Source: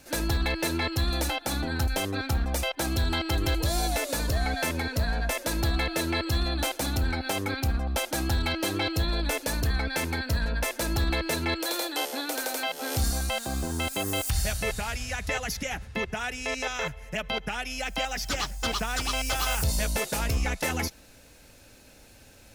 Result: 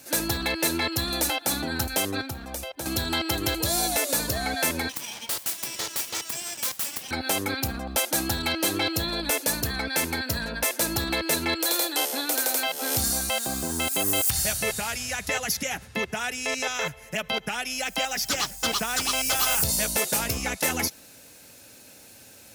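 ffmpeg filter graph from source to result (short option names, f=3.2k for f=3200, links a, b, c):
-filter_complex "[0:a]asettb=1/sr,asplit=3[a][b][c];[a]atrim=end=2.214[d];[b]atrim=start=2.21:end=2.86,asetpts=PTS-STARTPTS,afade=t=in:d=0.004:c=qsin,afade=t=out:st=0.646:d=0.004:c=qsin,bandreject=f=2k:w=29,asubboost=boost=11.5:cutoff=110,acrossover=split=100|650[e][f][g];[e]acompressor=threshold=-34dB:ratio=4[h];[f]acompressor=threshold=-38dB:ratio=4[i];[g]acompressor=threshold=-42dB:ratio=4[j];[h][i][j]amix=inputs=3:normalize=0[k];[c]atrim=start=2.856[l];[d][k]acrossfade=d=0.004:c1=hsin:c2=qsin[m];[m][l]acrossfade=d=0.004:c1=qsin:c2=hsin,asettb=1/sr,asplit=3[n][o][p];[n]atrim=end=4.894[q];[o]atrim=start=4.89:end=7.11,asetpts=PTS-STARTPTS,afade=t=in:d=0.004:c=qsin,afade=t=out:st=2.216:d=0.004:c=qsin,highpass=f=850:w=0.5412,highpass=f=850:w=1.3066,aeval=exprs='abs(val(0))':c=same[r];[p]atrim=start=7.106[s];[q][r]acrossfade=d=0.004:c1=hsin:c2=qsin[t];[t][s]acrossfade=d=0.004:c1=qsin:c2=hsin,highpass=120,highshelf=f=6.2k:g=10,volume=1.5dB"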